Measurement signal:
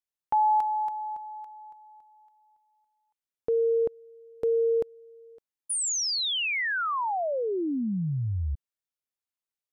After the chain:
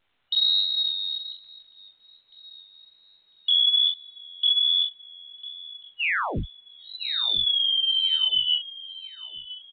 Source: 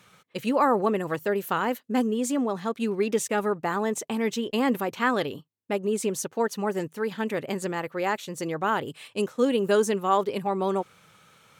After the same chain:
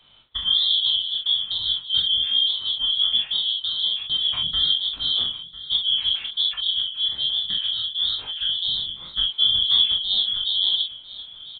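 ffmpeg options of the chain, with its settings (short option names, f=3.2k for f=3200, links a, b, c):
-filter_complex "[0:a]afftfilt=real='real(if(lt(b,272),68*(eq(floor(b/68),0)*2+eq(floor(b/68),1)*3+eq(floor(b/68),2)*0+eq(floor(b/68),3)*1)+mod(b,68),b),0)':imag='imag(if(lt(b,272),68*(eq(floor(b/68),0)*2+eq(floor(b/68),1)*3+eq(floor(b/68),2)*0+eq(floor(b/68),3)*1)+mod(b,68),b),0)':win_size=2048:overlap=0.75,equalizer=f=440:t=o:w=2.4:g=-10.5,asplit=2[a][b];[b]acompressor=threshold=-33dB:ratio=4:attack=83:release=968:knee=1:detection=peak,volume=0dB[c];[a][c]amix=inputs=2:normalize=0,asplit=2[d][e];[e]adelay=42,volume=-4.5dB[f];[d][f]amix=inputs=2:normalize=0,asplit=2[g][h];[h]aecho=0:1:1000|2000|3000:0.15|0.0539|0.0194[i];[g][i]amix=inputs=2:normalize=0,flanger=delay=19:depth=7.1:speed=1.2,volume=3.5dB" -ar 8000 -c:a pcm_alaw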